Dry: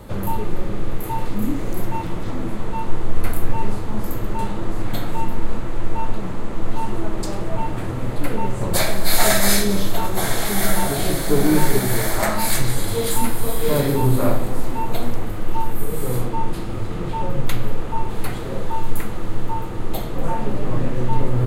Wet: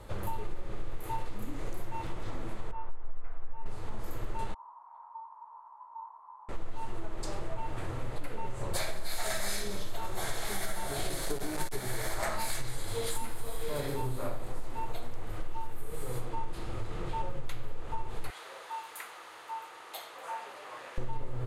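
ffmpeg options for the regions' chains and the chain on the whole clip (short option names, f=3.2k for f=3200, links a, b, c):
-filter_complex "[0:a]asettb=1/sr,asplit=3[a][b][c];[a]atrim=end=2.714[d];[b]atrim=start=2.71:end=3.66,asetpts=PTS-STARTPTS,afade=t=in:d=0.004:c=qsin,afade=t=out:st=0.946:d=0.004:c=qsin,lowpass=1.3k,equalizer=f=170:w=0.35:g=-14.5[e];[c]atrim=start=3.656[f];[d][e]acrossfade=d=0.004:c1=hsin:c2=qsin[g];[g][f]acrossfade=d=0.004:c1=qsin:c2=hsin,asettb=1/sr,asplit=3[h][i][j];[h]atrim=end=4.544[k];[i]atrim=start=4.54:end=6.49,asetpts=PTS-STARTPTS,afade=t=in:d=0.004:c=qsin,afade=t=out:st=1.946:d=0.004:c=qsin,asuperpass=centerf=970:order=4:qfactor=5.8,asplit=2[l][m];[m]adelay=15,volume=-4dB[n];[l][n]amix=inputs=2:normalize=0,atrim=end_sample=85995[o];[j]atrim=start=6.486[p];[k][o]acrossfade=d=0.004:c1=hsin:c2=qsin[q];[q][p]acrossfade=d=0.004:c1=qsin:c2=hsin,asettb=1/sr,asplit=3[r][s][t];[r]atrim=end=11.094[u];[s]atrim=start=11.09:end=11.75,asetpts=PTS-STARTPTS,afade=t=in:d=0.004:c=qsin,afade=t=out:st=0.656:d=0.004:c=qsin,bass=f=250:g=-1,treble=f=4k:g=3,aeval=exprs='clip(val(0),-1,0.141)':c=same[v];[t]atrim=start=11.746[w];[u][v]acrossfade=d=0.004:c1=hsin:c2=qsin[x];[x][w]acrossfade=d=0.004:c1=qsin:c2=hsin,asettb=1/sr,asplit=3[y][z][aa];[y]atrim=end=18.304[ab];[z]atrim=start=18.3:end=20.98,asetpts=PTS-STARTPTS,afade=t=in:d=0.004:c=qsin,afade=t=out:st=2.676:d=0.004:c=qsin,highpass=930,bandreject=f=7.6k:w=16[ac];[aa]atrim=start=20.976[ad];[ab][ac]acrossfade=d=0.004:c1=hsin:c2=qsin[ae];[ae][ad]acrossfade=d=0.004:c1=qsin:c2=hsin,acompressor=threshold=-19dB:ratio=6,lowpass=11k,equalizer=f=210:w=1.1:g=-10,volume=-7dB"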